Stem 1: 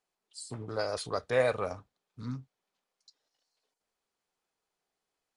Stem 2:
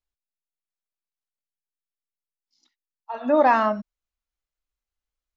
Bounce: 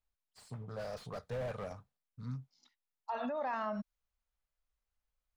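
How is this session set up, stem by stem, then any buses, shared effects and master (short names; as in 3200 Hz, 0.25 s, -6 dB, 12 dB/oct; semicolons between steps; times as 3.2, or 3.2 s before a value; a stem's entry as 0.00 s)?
-5.5 dB, 0.00 s, no send, bell 150 Hz +5.5 dB 0.97 oct; expander -56 dBFS; slew limiter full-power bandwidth 19 Hz
+2.5 dB, 0.00 s, no send, compressor 2.5:1, threshold -33 dBFS, peak gain reduction 13 dB; limiter -30.5 dBFS, peak gain reduction 10.5 dB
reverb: off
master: bell 330 Hz -14 dB 0.42 oct; mismatched tape noise reduction decoder only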